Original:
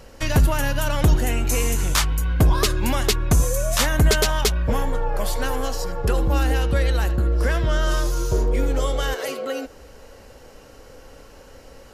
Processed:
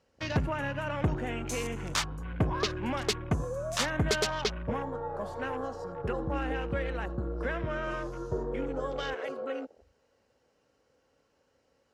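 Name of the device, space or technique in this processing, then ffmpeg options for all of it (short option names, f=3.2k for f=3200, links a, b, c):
over-cleaned archive recording: -af "highpass=100,lowpass=7.5k,afwtdn=0.02,volume=-7.5dB"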